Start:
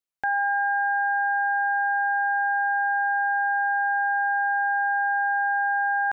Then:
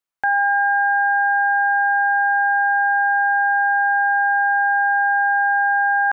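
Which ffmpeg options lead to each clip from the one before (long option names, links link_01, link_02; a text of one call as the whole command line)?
ffmpeg -i in.wav -af "equalizer=frequency=1200:width_type=o:width=1.7:gain=7,volume=1dB" out.wav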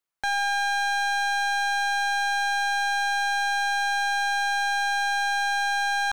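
ffmpeg -i in.wav -af "volume=23.5dB,asoftclip=hard,volume=-23.5dB" out.wav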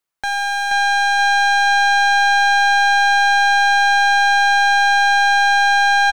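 ffmpeg -i in.wav -af "aecho=1:1:477|954|1431|1908|2385|2862:0.708|0.304|0.131|0.0563|0.0242|0.0104,volume=4.5dB" out.wav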